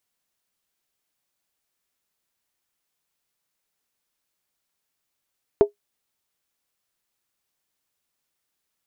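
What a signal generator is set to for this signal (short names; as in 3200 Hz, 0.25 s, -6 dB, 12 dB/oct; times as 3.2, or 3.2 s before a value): skin hit, lowest mode 411 Hz, decay 0.12 s, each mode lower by 10.5 dB, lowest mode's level -6 dB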